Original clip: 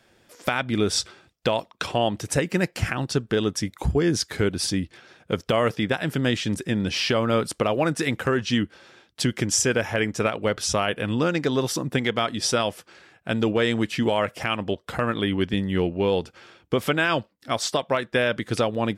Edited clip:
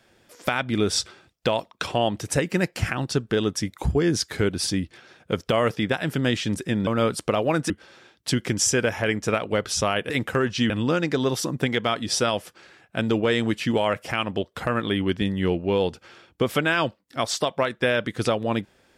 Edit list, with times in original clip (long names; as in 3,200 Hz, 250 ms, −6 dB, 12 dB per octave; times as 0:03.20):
0:06.87–0:07.19: remove
0:08.02–0:08.62: move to 0:11.02